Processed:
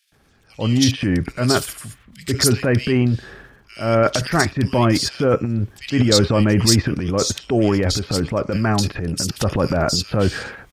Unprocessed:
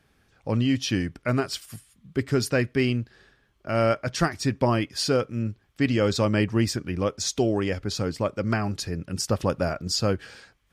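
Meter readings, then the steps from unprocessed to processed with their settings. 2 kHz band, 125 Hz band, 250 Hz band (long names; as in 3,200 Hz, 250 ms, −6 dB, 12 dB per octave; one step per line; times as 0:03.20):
+6.0 dB, +7.5 dB, +6.5 dB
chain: transient designer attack −5 dB, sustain +11 dB
multiband delay without the direct sound highs, lows 120 ms, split 2,500 Hz
level +6.5 dB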